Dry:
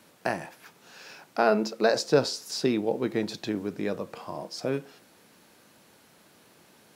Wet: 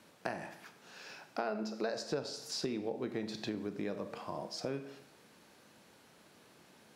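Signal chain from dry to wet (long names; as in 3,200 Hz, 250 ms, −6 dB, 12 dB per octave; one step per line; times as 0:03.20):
high-shelf EQ 12,000 Hz −11 dB
four-comb reverb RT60 0.63 s, combs from 29 ms, DRR 10.5 dB
downward compressor 4 to 1, threshold −31 dBFS, peak gain reduction 13.5 dB
level −3.5 dB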